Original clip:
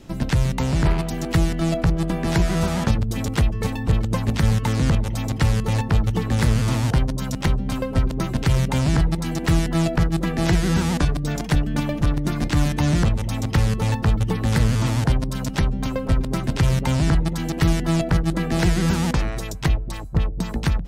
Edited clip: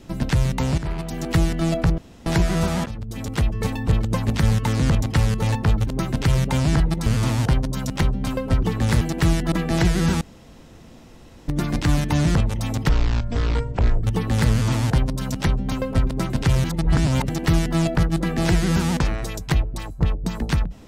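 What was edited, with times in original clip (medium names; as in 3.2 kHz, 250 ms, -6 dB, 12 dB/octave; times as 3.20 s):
0.78–1.31 s: fade in, from -12.5 dB
1.98–2.26 s: room tone
2.86–3.59 s: fade in linear, from -16 dB
5.02–5.28 s: delete
6.13–6.51 s: swap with 8.08–9.27 s
9.78–10.20 s: delete
10.89–12.16 s: room tone
13.57–14.18 s: speed 53%
16.78–17.43 s: reverse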